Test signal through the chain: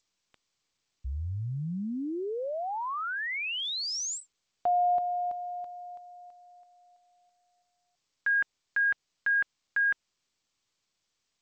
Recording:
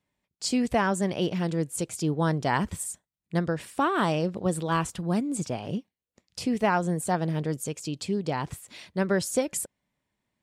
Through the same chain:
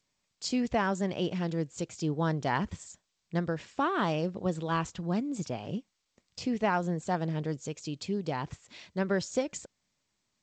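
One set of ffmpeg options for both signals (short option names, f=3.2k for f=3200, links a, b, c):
-af "volume=-4dB" -ar 16000 -c:a g722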